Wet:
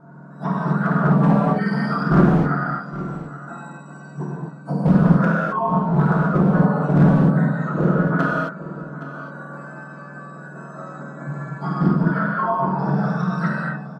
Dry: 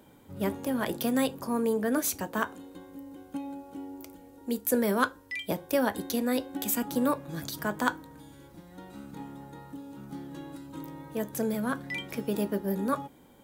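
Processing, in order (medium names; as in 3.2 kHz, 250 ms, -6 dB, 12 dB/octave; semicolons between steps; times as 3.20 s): spectrum inverted on a logarithmic axis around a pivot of 1.5 kHz; level-controlled noise filter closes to 1.5 kHz, open at -23.5 dBFS; FFT filter 140 Hz 0 dB, 1.6 kHz +12 dB, 2.5 kHz -20 dB, 7.4 kHz -2 dB; in parallel at -5 dB: saturation -27.5 dBFS, distortion -4 dB; on the sum: low-pass that closes with the level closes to 920 Hz, closed at -24 dBFS; hard clipper -19 dBFS, distortion -8 dB; delay 784 ms -14.5 dB; gated-style reverb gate 280 ms flat, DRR -6 dB; speed mistake 25 fps video run at 24 fps; loudspeaker Doppler distortion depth 0.22 ms; trim +3 dB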